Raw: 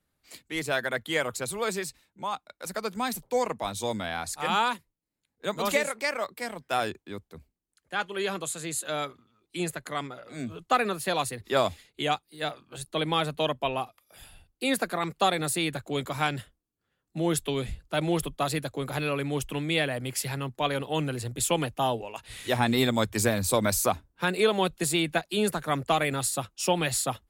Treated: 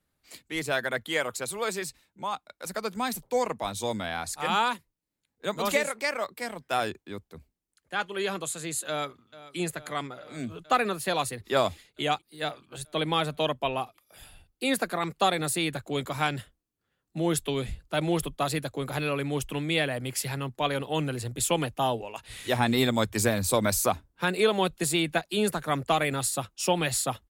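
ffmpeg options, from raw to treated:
-filter_complex "[0:a]asettb=1/sr,asplit=3[s0][s1][s2];[s0]atrim=end=1.094[s3];[s1]atrim=start=1.09:end=1.82,asetpts=PTS-STARTPTS,afade=t=in:d=0.004:c=qsin,afade=t=out:st=0.726:d=0.004:c=qsin,lowshelf=f=180:g=-8[s4];[s2]atrim=start=1.816[s5];[s3][s4]acrossfade=d=0.004:c1=hsin:c2=qsin[s6];[s6][s5]acrossfade=d=0.004:c1=qsin:c2=hsin,asplit=2[s7][s8];[s8]afade=t=in:st=8.88:d=0.01,afade=t=out:st=9.57:d=0.01,aecho=0:1:440|880|1320|1760|2200|2640|3080|3520|3960|4400|4840|5280:0.141254|0.113003|0.0904024|0.0723219|0.0578575|0.046286|0.0370288|0.0296231|0.0236984|0.0189588|0.015167|0.0121336[s9];[s7][s9]amix=inputs=2:normalize=0"

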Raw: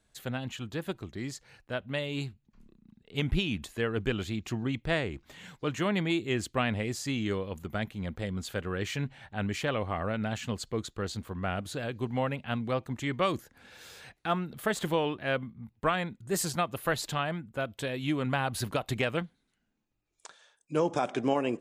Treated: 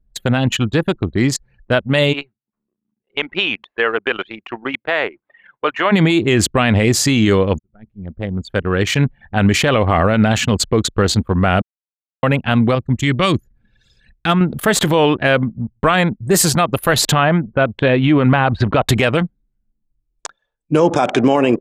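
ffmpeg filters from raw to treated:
-filter_complex "[0:a]asplit=3[s0][s1][s2];[s0]afade=t=out:st=2.12:d=0.02[s3];[s1]highpass=650,lowpass=2500,afade=t=in:st=2.12:d=0.02,afade=t=out:st=5.91:d=0.02[s4];[s2]afade=t=in:st=5.91:d=0.02[s5];[s3][s4][s5]amix=inputs=3:normalize=0,asettb=1/sr,asplit=3[s6][s7][s8];[s6]atrim=end=12.754[s9];[s7]atrim=start=12.75:end=14.41,asetpts=PTS-STARTPTS,afade=t=in:d=0.004:c=qsin,afade=t=out:st=1.656:d=0.004:c=qsin,equalizer=f=700:t=o:w=2.7:g=-9.5[s10];[s8]atrim=start=14.406[s11];[s9][s10]acrossfade=d=0.004:c1=hsin:c2=qsin[s12];[s12][s11]acrossfade=d=0.004:c1=qsin:c2=hsin,asettb=1/sr,asplit=3[s13][s14][s15];[s13]atrim=end=17.124[s16];[s14]atrim=start=17.12:end=18.83,asetpts=PTS-STARTPTS,afade=t=in:d=0.004:c=qsin,afade=t=out:st=1.706:d=0.004:c=qsin,lowpass=2700[s17];[s15]atrim=start=18.826[s18];[s16][s17]acrossfade=d=0.004:c1=hsin:c2=qsin[s19];[s19][s18]acrossfade=d=0.004:c1=qsin:c2=hsin,asplit=4[s20][s21][s22][s23];[s20]atrim=end=7.59,asetpts=PTS-STARTPTS,afade=t=out:st=7.586:d=0.004:c=hsin[s24];[s21]atrim=start=7.59:end=11.62,asetpts=PTS-STARTPTS,afade=t=in:d=2.05,afade=t=out:st=4.026:d=0.004:c=hsin[s25];[s22]atrim=start=11.62:end=12.23,asetpts=PTS-STARTPTS,volume=0[s26];[s23]atrim=start=12.23,asetpts=PTS-STARTPTS,afade=t=in:d=0.004:c=hsin[s27];[s24][s25][s26][s27]concat=n=4:v=0:a=1,anlmdn=0.158,alimiter=level_in=16.8:limit=0.891:release=50:level=0:latency=1,volume=0.708"

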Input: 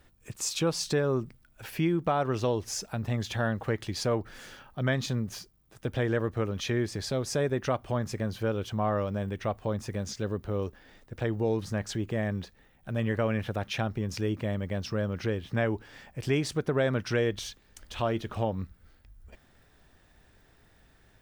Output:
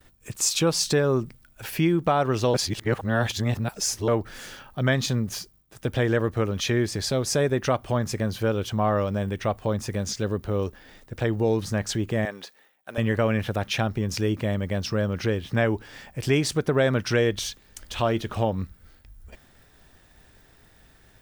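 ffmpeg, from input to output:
-filter_complex "[0:a]asettb=1/sr,asplit=3[s0][s1][s2];[s0]atrim=end=12.254[s3];[s1]atrim=start=12.25:end=12.98,asetpts=PTS-STARTPTS,afade=t=in:d=0.004:c=qsin,afade=t=out:st=0.726:d=0.004:c=qsin,highpass=480[s4];[s2]atrim=start=12.976[s5];[s3][s4]acrossfade=d=0.004:c1=hsin:c2=qsin[s6];[s6][s5]acrossfade=d=0.004:c1=qsin:c2=hsin,asplit=3[s7][s8][s9];[s7]atrim=end=2.542[s10];[s8]atrim=start=2.538:end=4.082,asetpts=PTS-STARTPTS,areverse[s11];[s9]atrim=start=4.078[s12];[s10][s11]acrossfade=d=0.004:c1=hsin:c2=hsin[s13];[s13][s12]acrossfade=d=0.004:c1=hsin:c2=hsin,agate=range=0.0224:threshold=0.00112:ratio=3:detection=peak,highshelf=f=4300:g=5,volume=1.78"

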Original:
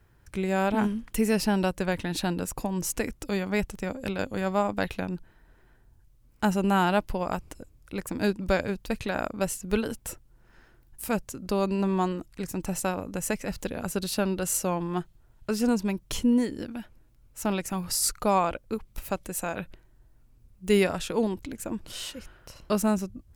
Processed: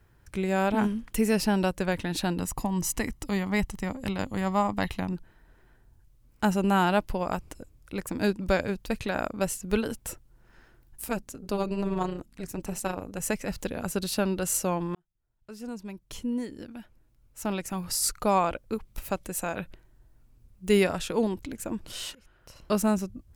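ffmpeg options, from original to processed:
-filter_complex "[0:a]asettb=1/sr,asplit=3[s0][s1][s2];[s0]atrim=end=2.384[s3];[s1]atrim=start=2.38:end=5.13,asetpts=PTS-STARTPTS,afade=t=in:d=0.004:c=qsin,afade=t=out:st=2.746:d=0.004:c=qsin,aecho=1:1:1:0.46,atrim=end_sample=121275[s4];[s2]atrim=start=5.126[s5];[s3][s4]acrossfade=d=0.004:c1=hsin:c2=qsin[s6];[s6][s5]acrossfade=d=0.004:c1=qsin:c2=hsin,asettb=1/sr,asplit=3[s7][s8][s9];[s7]atrim=end=11.054[s10];[s8]atrim=start=11.05:end=13.2,asetpts=PTS-STARTPTS,afade=t=in:d=0.004:c=qsin,afade=t=out:st=2.146:d=0.004:c=qsin,tremolo=f=210:d=0.71[s11];[s9]atrim=start=13.196[s12];[s10][s11]acrossfade=d=0.004:c1=hsin:c2=qsin[s13];[s13][s12]acrossfade=d=0.004:c1=qsin:c2=hsin,asplit=3[s14][s15][s16];[s14]atrim=end=14.95,asetpts=PTS-STARTPTS,afade=t=out:st=14.946:d=0.004:c=hsin[s17];[s15]atrim=start=14.95:end=22.15,asetpts=PTS-STARTPTS,afade=t=in:d=3.47,afade=t=out:st=7.196:d=0.004:c=hsin:silence=0.0794328[s18];[s16]atrim=start=22.15,asetpts=PTS-STARTPTS,afade=t=in:d=0.58:silence=0.0794328[s19];[s17][s18][s19]concat=n=3:v=0:a=1"

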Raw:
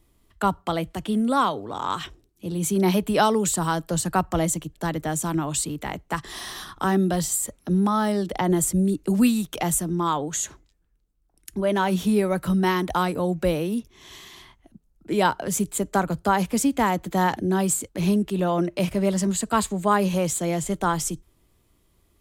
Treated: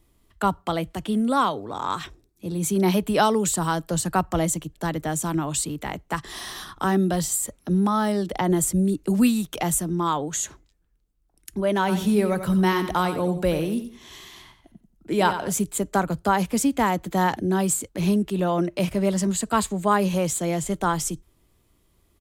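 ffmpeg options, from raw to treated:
-filter_complex "[0:a]asettb=1/sr,asplit=3[s0][s1][s2];[s0]atrim=end=1.584[s3];[s1]atrim=start=1.58:end=2.68,asetpts=PTS-STARTPTS,afade=t=in:d=0.004:c=qsin,afade=t=out:st=1.096:d=0.004:c=qsin,bandreject=f=3000:w=8.2[s4];[s2]atrim=start=2.676[s5];[s3][s4]acrossfade=d=0.004:c1=hsin:c2=qsin[s6];[s6][s5]acrossfade=d=0.004:c1=qsin:c2=hsin,asplit=3[s7][s8][s9];[s7]afade=t=out:st=11.87:d=0.02[s10];[s8]aecho=1:1:90|180|270:0.316|0.0822|0.0214,afade=t=in:st=11.87:d=0.02,afade=t=out:st=15.51:d=0.02[s11];[s9]afade=t=in:st=15.51:d=0.02[s12];[s10][s11][s12]amix=inputs=3:normalize=0"

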